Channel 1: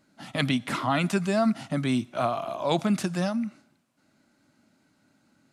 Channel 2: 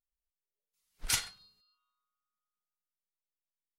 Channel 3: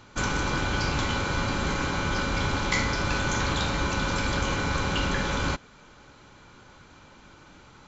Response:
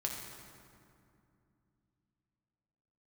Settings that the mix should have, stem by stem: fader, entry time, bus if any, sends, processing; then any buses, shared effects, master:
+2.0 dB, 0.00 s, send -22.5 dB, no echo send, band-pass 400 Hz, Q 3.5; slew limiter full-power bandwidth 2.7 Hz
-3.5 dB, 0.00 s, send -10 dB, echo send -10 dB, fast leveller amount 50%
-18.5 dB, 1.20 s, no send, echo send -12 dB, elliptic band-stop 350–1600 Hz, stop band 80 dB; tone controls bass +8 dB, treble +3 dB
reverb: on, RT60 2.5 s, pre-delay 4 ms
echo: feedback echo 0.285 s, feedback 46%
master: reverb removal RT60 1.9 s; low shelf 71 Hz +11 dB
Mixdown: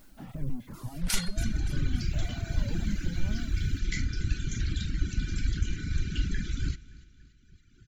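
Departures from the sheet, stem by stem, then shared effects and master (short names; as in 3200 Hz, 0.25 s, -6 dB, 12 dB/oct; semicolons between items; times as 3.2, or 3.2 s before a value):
stem 1: missing band-pass 400 Hz, Q 3.5; stem 3 -18.5 dB -> -9.0 dB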